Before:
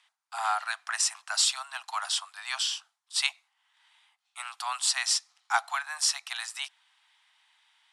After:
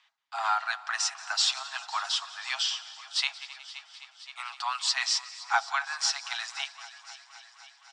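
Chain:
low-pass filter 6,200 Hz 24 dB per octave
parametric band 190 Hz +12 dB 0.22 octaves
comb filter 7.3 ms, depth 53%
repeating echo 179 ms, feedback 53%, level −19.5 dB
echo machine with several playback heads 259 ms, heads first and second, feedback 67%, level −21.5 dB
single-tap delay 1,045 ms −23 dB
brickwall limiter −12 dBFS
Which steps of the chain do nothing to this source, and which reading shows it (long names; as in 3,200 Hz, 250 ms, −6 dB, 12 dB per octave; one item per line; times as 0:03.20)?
parametric band 190 Hz: nothing at its input below 570 Hz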